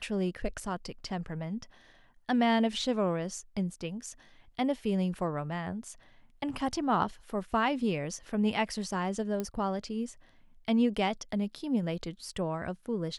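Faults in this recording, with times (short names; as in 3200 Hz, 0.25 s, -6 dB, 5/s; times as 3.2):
9.4 pop -20 dBFS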